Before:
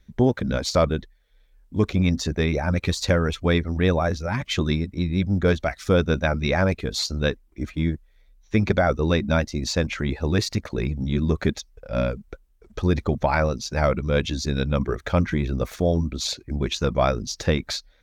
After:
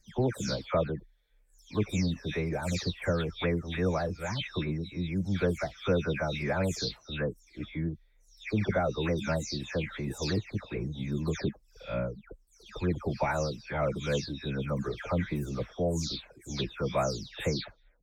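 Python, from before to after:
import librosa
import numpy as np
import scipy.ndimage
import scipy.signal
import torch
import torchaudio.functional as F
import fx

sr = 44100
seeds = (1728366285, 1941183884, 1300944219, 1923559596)

y = fx.spec_delay(x, sr, highs='early', ms=301)
y = y * librosa.db_to_amplitude(-7.5)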